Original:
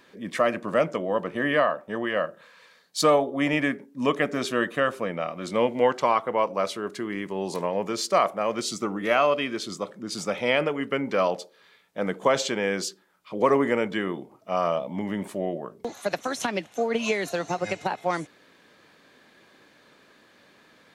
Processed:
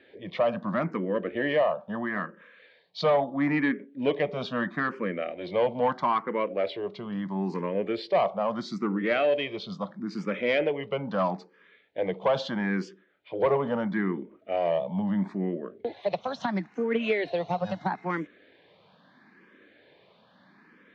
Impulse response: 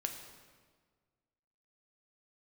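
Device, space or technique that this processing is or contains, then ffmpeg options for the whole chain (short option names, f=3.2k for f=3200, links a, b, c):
barber-pole phaser into a guitar amplifier: -filter_complex "[0:a]asplit=2[a][b];[b]afreqshift=0.76[c];[a][c]amix=inputs=2:normalize=1,asoftclip=type=tanh:threshold=-17.5dB,highpass=80,equalizer=f=190:t=q:w=4:g=5,equalizer=f=1.3k:t=q:w=4:g=-4,equalizer=f=2.7k:t=q:w=4:g=-4,lowpass=f=3.6k:w=0.5412,lowpass=f=3.6k:w=1.3066,volume=2dB"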